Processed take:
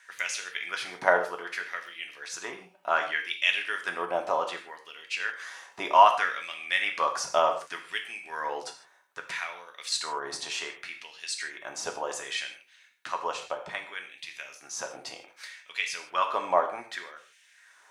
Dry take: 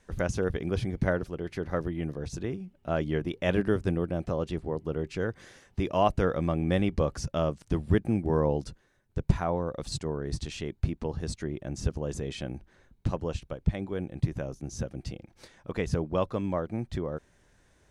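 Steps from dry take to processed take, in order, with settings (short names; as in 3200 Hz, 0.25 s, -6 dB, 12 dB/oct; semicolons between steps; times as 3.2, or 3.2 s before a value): LFO high-pass sine 0.65 Hz 810–2700 Hz; non-linear reverb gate 0.18 s falling, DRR 3 dB; gain +6 dB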